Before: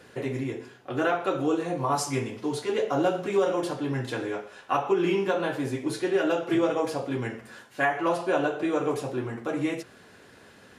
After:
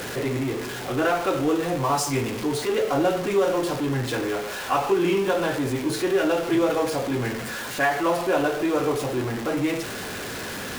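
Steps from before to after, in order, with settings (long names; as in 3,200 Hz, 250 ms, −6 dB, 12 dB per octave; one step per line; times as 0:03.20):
converter with a step at zero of −28.5 dBFS
level +1 dB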